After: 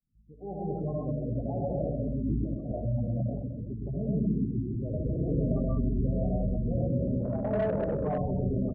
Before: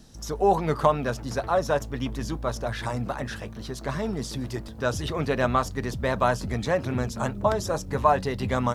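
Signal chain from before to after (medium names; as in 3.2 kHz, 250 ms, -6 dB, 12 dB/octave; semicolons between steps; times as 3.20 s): fade-in on the opening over 1.40 s; peak limiter -16 dBFS, peak gain reduction 9 dB; band-stop 990 Hz, Q 6.5; reverberation, pre-delay 40 ms, DRR -5 dB; dynamic bell 680 Hz, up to +4 dB, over -31 dBFS, Q 0.89; 2.28–2.74 s: compressor with a negative ratio -25 dBFS, ratio -0.5; FFT filter 180 Hz 0 dB, 990 Hz -19 dB, 1.7 kHz -26 dB; feedback delay 130 ms, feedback 53%, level -8 dB; spectral gate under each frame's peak -20 dB strong; 7.23–8.18 s: overdrive pedal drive 15 dB, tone 6.7 kHz, clips at -18 dBFS; trim -2 dB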